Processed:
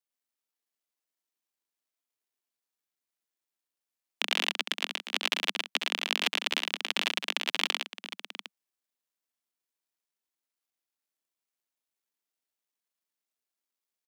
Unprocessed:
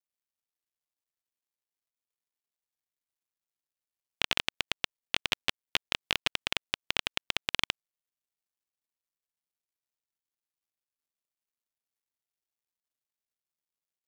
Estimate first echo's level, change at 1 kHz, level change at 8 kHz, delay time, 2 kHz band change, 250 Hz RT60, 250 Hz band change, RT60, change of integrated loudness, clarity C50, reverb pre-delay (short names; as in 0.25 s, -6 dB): -7.0 dB, +2.5 dB, +2.5 dB, 67 ms, +2.5 dB, none, +2.0 dB, none, +2.5 dB, none, none